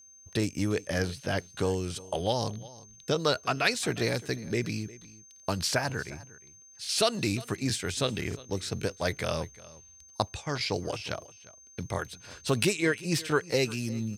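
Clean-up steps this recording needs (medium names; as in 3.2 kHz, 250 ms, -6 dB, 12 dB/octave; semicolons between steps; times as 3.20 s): band-stop 6.3 kHz, Q 30; inverse comb 355 ms -20 dB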